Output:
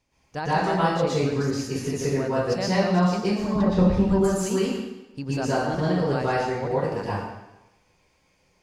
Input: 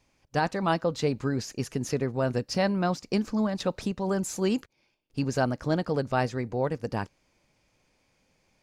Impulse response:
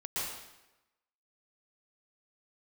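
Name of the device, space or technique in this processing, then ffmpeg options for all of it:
bathroom: -filter_complex "[0:a]asettb=1/sr,asplit=3[a][b][c];[a]atrim=end=3.444[d];[b]atrim=start=3.44:end=4.08,asetpts=PTS-STARTPTS,afade=t=in:d=0.004:c=qsin,afade=t=out:st=0.636:d=0.004:c=qsin,aemphasis=mode=reproduction:type=riaa[e];[c]atrim=start=4.076[f];[d][e]acrossfade=d=0.004:c1=hsin:c2=qsin[g];[g][f]acrossfade=d=0.004:c1=qsin:c2=hsin[h];[1:a]atrim=start_sample=2205[i];[h][i]afir=irnorm=-1:irlink=0"

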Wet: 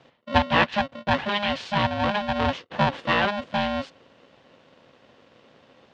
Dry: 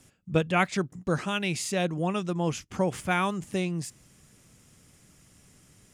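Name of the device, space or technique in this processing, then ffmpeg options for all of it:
ring modulator pedal into a guitar cabinet: -af "aeval=exprs='val(0)*sgn(sin(2*PI*410*n/s))':c=same,highpass=94,equalizer=f=200:t=q:w=4:g=-5,equalizer=f=310:t=q:w=4:g=-9,equalizer=f=610:t=q:w=4:g=-4,equalizer=f=1.3k:t=q:w=4:g=-6,equalizer=f=2.2k:t=q:w=4:g=-6,lowpass=f=3.5k:w=0.5412,lowpass=f=3.5k:w=1.3066,volume=7.5dB"

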